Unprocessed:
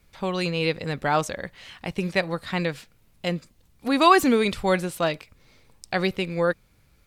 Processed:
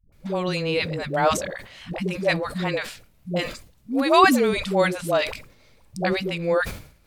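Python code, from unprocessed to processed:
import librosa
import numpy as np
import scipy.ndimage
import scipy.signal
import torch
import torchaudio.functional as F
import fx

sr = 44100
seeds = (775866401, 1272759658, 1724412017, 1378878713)

y = fx.peak_eq(x, sr, hz=610.0, db=5.0, octaves=0.35)
y = fx.dispersion(y, sr, late='highs', ms=125.0, hz=350.0)
y = fx.sustainer(y, sr, db_per_s=100.0)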